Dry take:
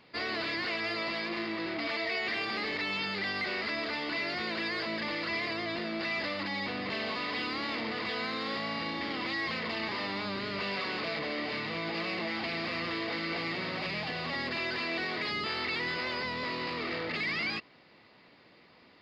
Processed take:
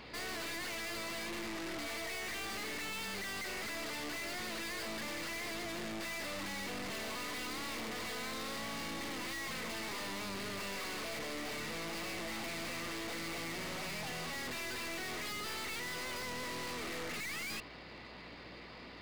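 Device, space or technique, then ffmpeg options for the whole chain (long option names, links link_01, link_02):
valve amplifier with mains hum: -af "aeval=exprs='(tanh(316*val(0)+0.3)-tanh(0.3))/316':channel_layout=same,aeval=exprs='val(0)+0.000316*(sin(2*PI*60*n/s)+sin(2*PI*2*60*n/s)/2+sin(2*PI*3*60*n/s)/3+sin(2*PI*4*60*n/s)/4+sin(2*PI*5*60*n/s)/5)':channel_layout=same,volume=9.5dB"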